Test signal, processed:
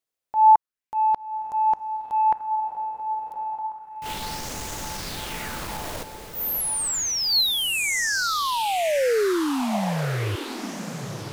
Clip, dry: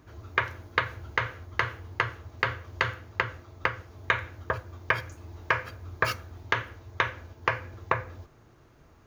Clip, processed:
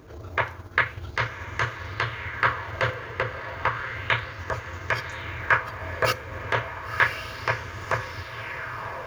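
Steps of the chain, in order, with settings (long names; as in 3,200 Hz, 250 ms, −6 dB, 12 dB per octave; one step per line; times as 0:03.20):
transient designer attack −11 dB, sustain −7 dB
feedback delay with all-pass diffusion 1,065 ms, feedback 52%, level −8 dB
auto-filter bell 0.32 Hz 460–6,800 Hz +8 dB
level +7.5 dB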